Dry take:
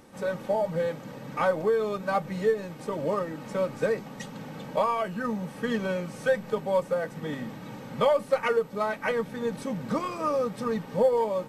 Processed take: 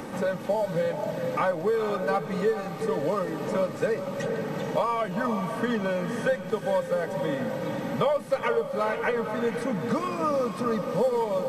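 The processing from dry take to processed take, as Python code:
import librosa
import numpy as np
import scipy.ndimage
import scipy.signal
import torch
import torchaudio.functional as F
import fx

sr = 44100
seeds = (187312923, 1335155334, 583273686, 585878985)

y = fx.echo_diffused(x, sr, ms=457, feedback_pct=41, wet_db=-8.5)
y = fx.band_squash(y, sr, depth_pct=70)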